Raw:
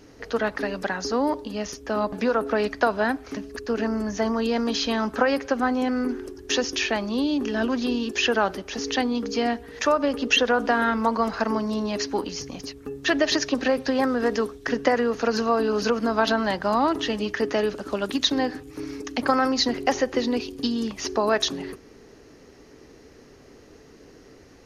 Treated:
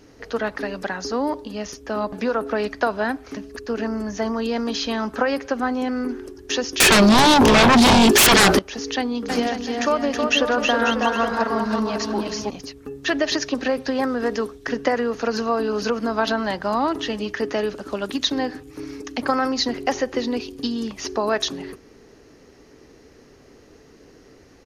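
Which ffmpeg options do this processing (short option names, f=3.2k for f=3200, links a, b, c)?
-filter_complex "[0:a]asettb=1/sr,asplit=3[a][b][c];[a]atrim=end=6.804[d];[b]atrim=start=6.8:end=8.59,asetpts=PTS-STARTPTS,afade=t=in:d=0.004:c=qsin,afade=t=out:st=1.786:d=0.004:c=qsin,aeval=exprs='0.335*sin(PI/2*7.08*val(0)/0.335)':c=same[e];[c]atrim=start=8.586[f];[d][e]acrossfade=d=0.004:c1=hsin:c2=qsin[g];[g][f]acrossfade=d=0.004:c1=qsin:c2=hsin,asplit=3[h][i][j];[h]afade=t=out:st=9.28:d=0.02[k];[i]aecho=1:1:320|544|700.8|810.6|887.4:0.631|0.398|0.251|0.158|0.1,afade=t=in:st=9.28:d=0.02,afade=t=out:st=12.49:d=0.02[l];[j]afade=t=in:st=12.49:d=0.02[m];[k][l][m]amix=inputs=3:normalize=0"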